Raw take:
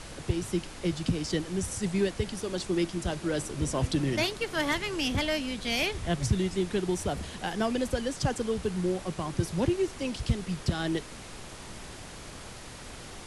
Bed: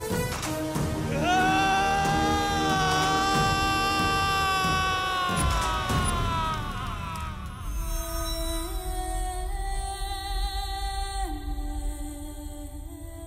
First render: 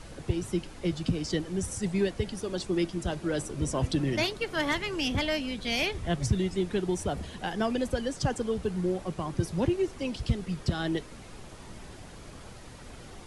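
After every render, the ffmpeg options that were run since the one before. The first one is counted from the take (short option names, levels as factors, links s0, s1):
-af "afftdn=nr=7:nf=-44"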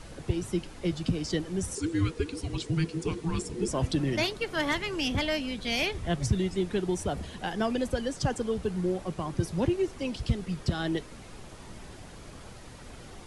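-filter_complex "[0:a]asettb=1/sr,asplit=3[s0][s1][s2];[s0]atrim=end=1.754[s3];[s1]atrim=start=1.75:end=3.68,asetpts=PTS-STARTPTS,afade=t=in:d=0.004:c=qsin,afade=t=out:st=1.926:d=0.004:c=qsin,afreqshift=-500[s4];[s2]atrim=start=3.676[s5];[s3][s4]acrossfade=d=0.004:c1=hsin:c2=qsin[s6];[s6][s5]acrossfade=d=0.004:c1=qsin:c2=hsin"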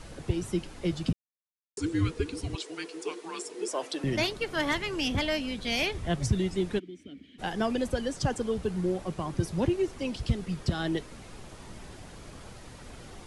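-filter_complex "[0:a]asettb=1/sr,asplit=3[s0][s1][s2];[s0]atrim=end=2.554[s3];[s1]atrim=start=2.55:end=4.04,asetpts=PTS-STARTPTS,afade=t=in:d=0.004:c=qsin,afade=t=out:st=1.486:d=0.004:c=qsin,highpass=f=370:w=0.5412,highpass=f=370:w=1.3066[s4];[s2]atrim=start=4.036[s5];[s3][s4]acrossfade=d=0.004:c1=hsin:c2=qsin[s6];[s6][s5]acrossfade=d=0.004:c1=qsin:c2=hsin,asplit=3[s7][s8][s9];[s7]afade=t=out:st=6.78:d=0.02[s10];[s8]asplit=3[s11][s12][s13];[s11]bandpass=f=270:t=q:w=8,volume=1[s14];[s12]bandpass=f=2290:t=q:w=8,volume=0.501[s15];[s13]bandpass=f=3010:t=q:w=8,volume=0.355[s16];[s14][s15][s16]amix=inputs=3:normalize=0,afade=t=in:st=6.78:d=0.02,afade=t=out:st=7.38:d=0.02[s17];[s9]afade=t=in:st=7.38:d=0.02[s18];[s10][s17][s18]amix=inputs=3:normalize=0,asplit=3[s19][s20][s21];[s19]atrim=end=1.13,asetpts=PTS-STARTPTS,afade=t=out:st=1.126:d=0.004:c=hsin[s22];[s20]atrim=start=1.13:end=1.77,asetpts=PTS-STARTPTS,volume=0[s23];[s21]atrim=start=1.77,asetpts=PTS-STARTPTS,afade=t=in:d=0.004:c=hsin[s24];[s22][s23][s24]concat=n=3:v=0:a=1"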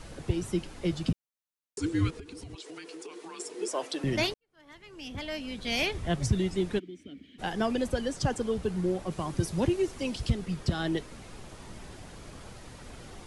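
-filter_complex "[0:a]asettb=1/sr,asplit=3[s0][s1][s2];[s0]atrim=end=2.104[s3];[s1]atrim=start=2.1:end=3.4,asetpts=PTS-STARTPTS,afade=t=in:d=0.004:c=qsin,afade=t=out:st=1.296:d=0.004:c=qsin,acompressor=threshold=0.0112:ratio=12:attack=3.2:release=140:knee=1:detection=peak[s4];[s2]atrim=start=3.396[s5];[s3][s4]acrossfade=d=0.004:c1=hsin:c2=qsin[s6];[s6][s5]acrossfade=d=0.004:c1=qsin:c2=hsin,asettb=1/sr,asplit=3[s7][s8][s9];[s7]atrim=end=9.114[s10];[s8]atrim=start=9.11:end=10.3,asetpts=PTS-STARTPTS,afade=t=in:d=0.004:c=qsin,afade=t=out:st=1.186:d=0.004:c=qsin,highshelf=f=4500:g=5.5[s11];[s9]atrim=start=10.296[s12];[s10][s11]acrossfade=d=0.004:c1=hsin:c2=qsin[s13];[s13][s12]acrossfade=d=0.004:c1=qsin:c2=hsin,asplit=2[s14][s15];[s14]atrim=end=4.34,asetpts=PTS-STARTPTS,afade=t=out:st=4.336:d=0.004:c=hsin[s16];[s15]atrim=start=4.34,asetpts=PTS-STARTPTS,afade=t=in:d=1.45:c=qua[s17];[s16][s17]concat=n=2:v=0:a=1"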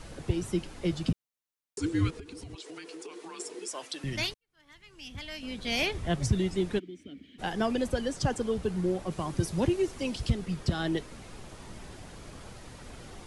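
-filter_complex "[0:a]asettb=1/sr,asplit=3[s0][s1][s2];[s0]atrim=end=3.594[s3];[s1]atrim=start=3.59:end=5.43,asetpts=PTS-STARTPTS,afade=t=in:d=0.004:c=qsin,afade=t=out:st=1.836:d=0.004:c=qsin,equalizer=f=470:t=o:w=2.6:g=-10.5[s4];[s2]atrim=start=5.426[s5];[s3][s4]acrossfade=d=0.004:c1=hsin:c2=qsin[s6];[s6][s5]acrossfade=d=0.004:c1=qsin:c2=hsin"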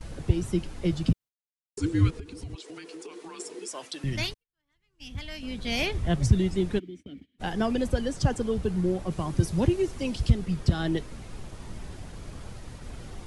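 -af "agate=range=0.0891:threshold=0.00447:ratio=16:detection=peak,lowshelf=f=170:g=9"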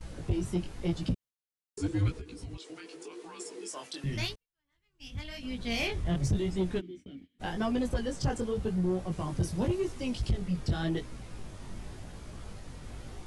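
-af "flanger=delay=16:depth=6.3:speed=0.9,asoftclip=type=tanh:threshold=0.0841"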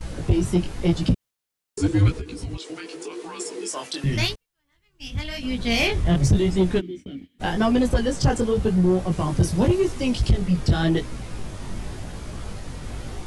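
-af "volume=3.35"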